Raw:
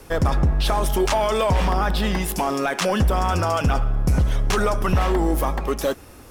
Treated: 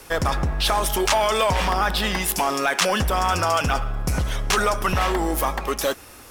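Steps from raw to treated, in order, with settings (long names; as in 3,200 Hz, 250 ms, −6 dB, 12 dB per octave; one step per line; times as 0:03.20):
tilt shelving filter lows −5.5 dB, about 660 Hz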